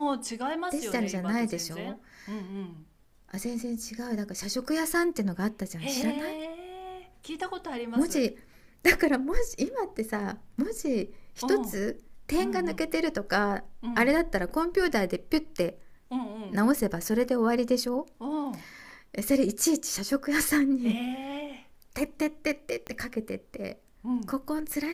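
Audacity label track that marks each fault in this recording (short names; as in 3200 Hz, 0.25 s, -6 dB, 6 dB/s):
22.870000	22.870000	pop -22 dBFS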